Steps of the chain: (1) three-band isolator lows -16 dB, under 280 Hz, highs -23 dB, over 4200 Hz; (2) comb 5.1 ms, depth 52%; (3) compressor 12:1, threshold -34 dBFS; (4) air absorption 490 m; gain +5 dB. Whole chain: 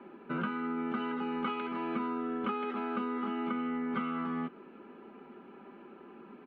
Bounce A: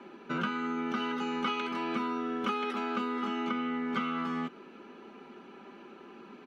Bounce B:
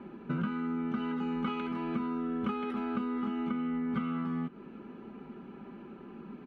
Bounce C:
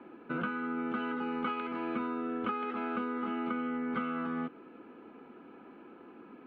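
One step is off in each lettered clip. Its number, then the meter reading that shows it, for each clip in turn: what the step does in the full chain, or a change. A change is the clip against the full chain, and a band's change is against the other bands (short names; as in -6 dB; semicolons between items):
4, 4 kHz band +8.0 dB; 1, 125 Hz band +9.0 dB; 2, 2 kHz band +3.0 dB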